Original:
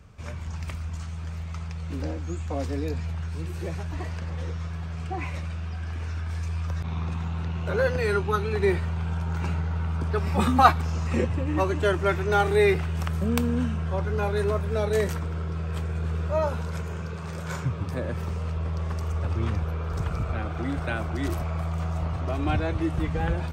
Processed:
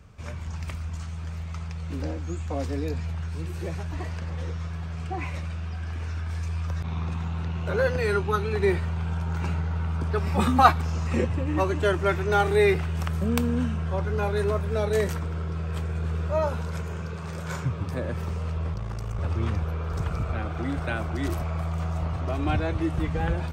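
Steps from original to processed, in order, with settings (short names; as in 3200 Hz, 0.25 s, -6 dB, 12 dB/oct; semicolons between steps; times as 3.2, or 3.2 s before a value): 18.73–19.19 ring modulator 28 Hz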